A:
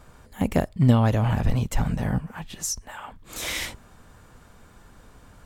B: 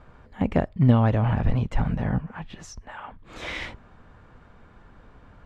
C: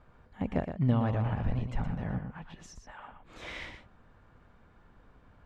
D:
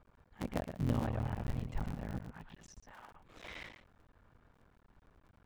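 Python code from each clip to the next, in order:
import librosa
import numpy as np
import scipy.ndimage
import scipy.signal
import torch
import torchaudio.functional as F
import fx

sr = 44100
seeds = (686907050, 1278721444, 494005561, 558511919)

y1 = scipy.signal.sosfilt(scipy.signal.butter(2, 2600.0, 'lowpass', fs=sr, output='sos'), x)
y2 = y1 + 10.0 ** (-8.0 / 20.0) * np.pad(y1, (int(118 * sr / 1000.0), 0))[:len(y1)]
y2 = y2 * librosa.db_to_amplitude(-9.0)
y3 = fx.cycle_switch(y2, sr, every=3, mode='muted')
y3 = y3 * librosa.db_to_amplitude(-5.0)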